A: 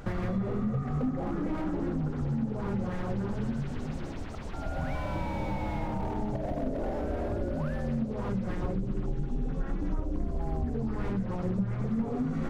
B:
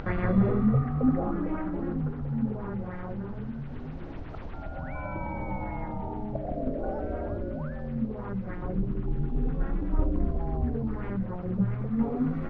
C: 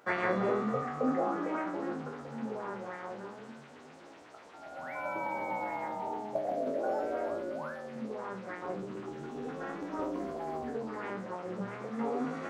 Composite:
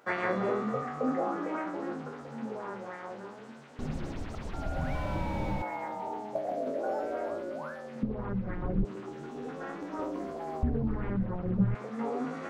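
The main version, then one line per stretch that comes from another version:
C
0:03.79–0:05.62: punch in from A
0:08.03–0:08.85: punch in from B
0:10.63–0:11.75: punch in from B

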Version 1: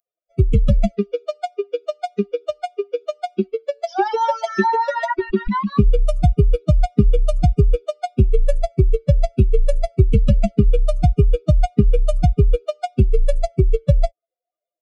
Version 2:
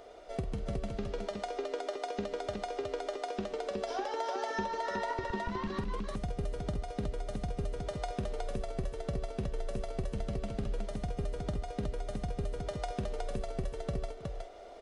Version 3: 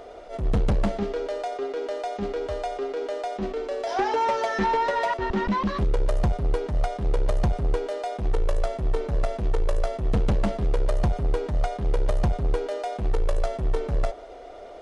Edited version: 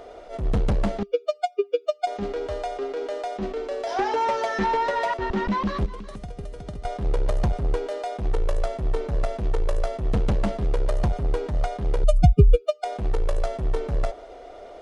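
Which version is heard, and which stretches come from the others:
3
0:01.03–0:02.07: punch in from 1
0:05.86–0:06.85: punch in from 2
0:12.04–0:12.84: punch in from 1

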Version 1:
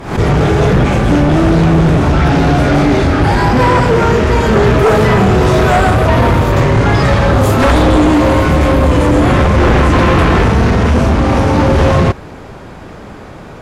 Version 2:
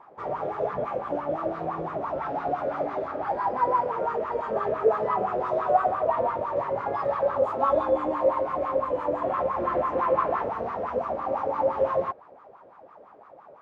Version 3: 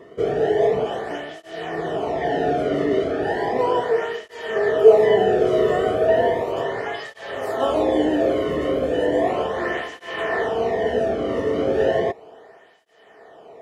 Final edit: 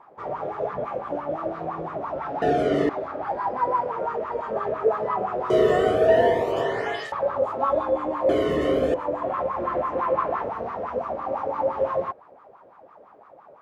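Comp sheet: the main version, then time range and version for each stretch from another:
2
0:02.42–0:02.89: punch in from 3
0:05.50–0:07.12: punch in from 3
0:08.29–0:08.94: punch in from 3
not used: 1

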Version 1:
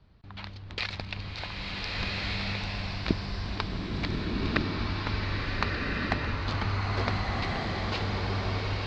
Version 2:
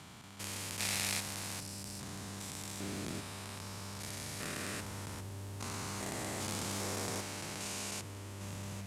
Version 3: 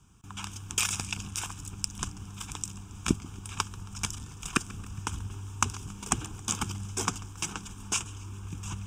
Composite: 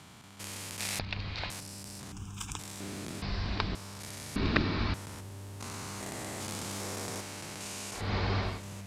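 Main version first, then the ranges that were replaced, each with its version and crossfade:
2
0:00.99–0:01.50: punch in from 1
0:02.12–0:02.59: punch in from 3
0:03.22–0:03.75: punch in from 1
0:04.36–0:04.94: punch in from 1
0:08.02–0:08.52: punch in from 1, crossfade 0.24 s

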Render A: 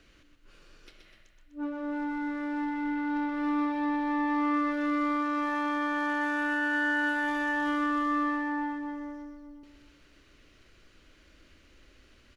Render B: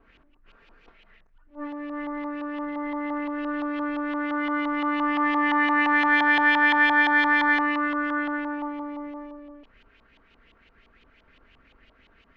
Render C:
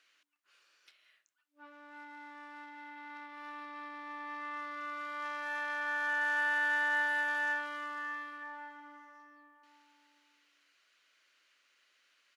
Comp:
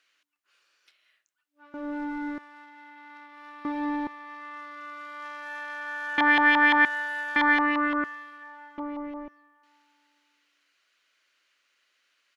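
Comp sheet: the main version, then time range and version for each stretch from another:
C
0:01.74–0:02.38: punch in from A
0:03.65–0:04.07: punch in from A
0:06.18–0:06.85: punch in from B
0:07.36–0:08.04: punch in from B
0:08.78–0:09.28: punch in from B

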